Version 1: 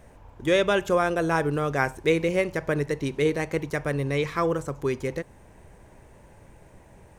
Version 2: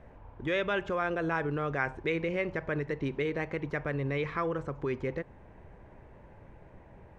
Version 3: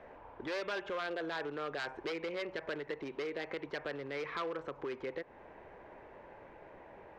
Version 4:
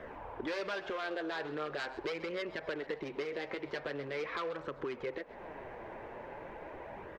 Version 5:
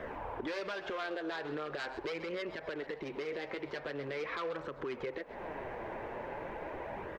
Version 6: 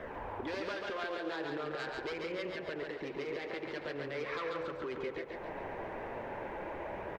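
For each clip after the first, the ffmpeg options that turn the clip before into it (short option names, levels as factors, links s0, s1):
-filter_complex "[0:a]lowpass=2300,acrossover=split=1400[s0][s1];[s0]alimiter=limit=0.0668:level=0:latency=1:release=97[s2];[s2][s1]amix=inputs=2:normalize=0,volume=0.841"
-filter_complex "[0:a]aeval=exprs='0.0501*(abs(mod(val(0)/0.0501+3,4)-2)-1)':c=same,acompressor=threshold=0.0112:ratio=5,acrossover=split=300 5300:gain=0.126 1 0.141[s0][s1][s2];[s0][s1][s2]amix=inputs=3:normalize=0,volume=1.68"
-filter_complex "[0:a]acompressor=threshold=0.00398:ratio=2,flanger=delay=0.6:depth=8.5:regen=-40:speed=0.42:shape=sinusoidal,asplit=5[s0][s1][s2][s3][s4];[s1]adelay=131,afreqshift=77,volume=0.141[s5];[s2]adelay=262,afreqshift=154,volume=0.0638[s6];[s3]adelay=393,afreqshift=231,volume=0.0285[s7];[s4]adelay=524,afreqshift=308,volume=0.0129[s8];[s0][s5][s6][s7][s8]amix=inputs=5:normalize=0,volume=3.76"
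-af "alimiter=level_in=3.16:limit=0.0631:level=0:latency=1:release=190,volume=0.316,volume=1.68"
-af "aecho=1:1:140|280|420|560|700|840:0.668|0.301|0.135|0.0609|0.0274|0.0123,volume=0.841"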